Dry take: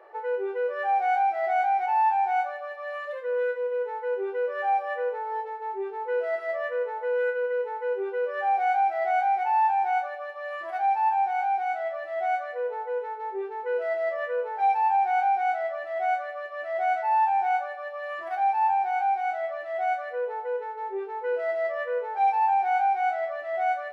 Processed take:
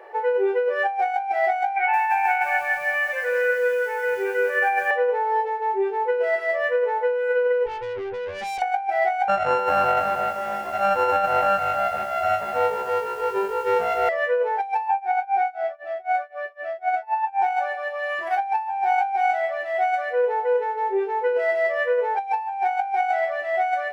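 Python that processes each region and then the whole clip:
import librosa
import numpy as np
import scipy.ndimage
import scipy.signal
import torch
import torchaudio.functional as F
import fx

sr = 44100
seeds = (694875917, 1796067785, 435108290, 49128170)

y = fx.chain(x, sr, fx.cabinet(low_hz=390.0, low_slope=12, high_hz=3000.0, hz=(460.0, 660.0, 960.0, 1600.0, 2300.0), db=(-5, -4, -8, 8, 7)),
    fx.echo_crushed(ms=174, feedback_pct=55, bits=9, wet_db=-6.0), at=(1.76, 4.91))
y = fx.chain(y, sr, fx.lowpass(hz=1600.0, slope=12),
    fx.tube_stage(drive_db=37.0, bias=0.6), at=(7.66, 8.62))
y = fx.chain(y, sr, fx.sample_sort(block=32),
    fx.lowpass(hz=1300.0, slope=12),
    fx.echo_crushed(ms=307, feedback_pct=35, bits=9, wet_db=-6.0), at=(9.28, 14.09))
y = fx.chain(y, sr, fx.tremolo(hz=3.9, depth=0.97),
    fx.lowpass(hz=3000.0, slope=6),
    fx.notch_comb(f0_hz=1000.0), at=(14.88, 17.42))
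y = fx.graphic_eq_31(y, sr, hz=(315, 630, 1250, 4000), db=(-6, -6, -10, -4))
y = fx.over_compress(y, sr, threshold_db=-29.0, ratio=-0.5)
y = y * librosa.db_to_amplitude(9.0)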